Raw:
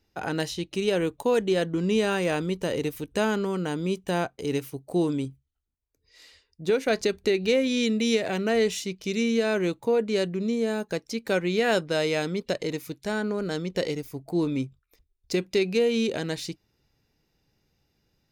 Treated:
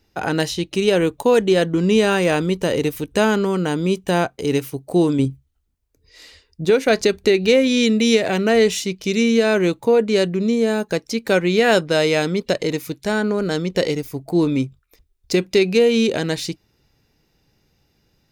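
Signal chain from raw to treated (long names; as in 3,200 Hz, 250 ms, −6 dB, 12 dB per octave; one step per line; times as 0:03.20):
0:05.19–0:06.65: low-shelf EQ 440 Hz +6 dB
level +8 dB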